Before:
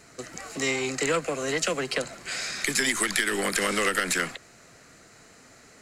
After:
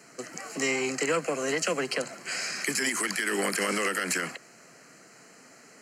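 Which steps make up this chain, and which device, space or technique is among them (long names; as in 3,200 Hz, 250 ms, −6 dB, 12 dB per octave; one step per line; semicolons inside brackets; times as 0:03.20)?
PA system with an anti-feedback notch (high-pass filter 150 Hz 24 dB per octave; Butterworth band-reject 3,600 Hz, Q 4.1; brickwall limiter −16.5 dBFS, peak gain reduction 7.5 dB)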